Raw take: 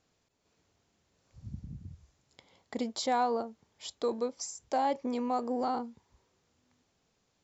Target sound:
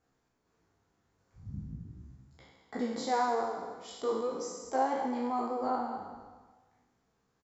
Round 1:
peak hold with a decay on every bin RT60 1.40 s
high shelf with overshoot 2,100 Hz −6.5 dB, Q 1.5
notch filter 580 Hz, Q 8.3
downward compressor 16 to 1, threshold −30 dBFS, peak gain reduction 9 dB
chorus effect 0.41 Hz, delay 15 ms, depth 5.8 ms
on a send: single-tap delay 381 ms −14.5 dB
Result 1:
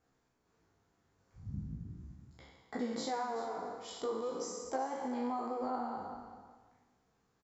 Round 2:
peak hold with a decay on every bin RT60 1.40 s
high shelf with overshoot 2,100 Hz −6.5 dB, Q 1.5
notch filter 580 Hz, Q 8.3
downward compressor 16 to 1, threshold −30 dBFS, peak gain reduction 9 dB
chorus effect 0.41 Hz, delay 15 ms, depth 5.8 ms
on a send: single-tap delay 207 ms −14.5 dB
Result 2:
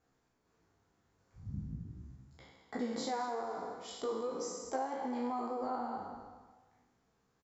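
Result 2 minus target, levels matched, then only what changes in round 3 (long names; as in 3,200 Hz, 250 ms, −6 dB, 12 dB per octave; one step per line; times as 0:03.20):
downward compressor: peak gain reduction +9 dB
remove: downward compressor 16 to 1, threshold −30 dBFS, peak gain reduction 9 dB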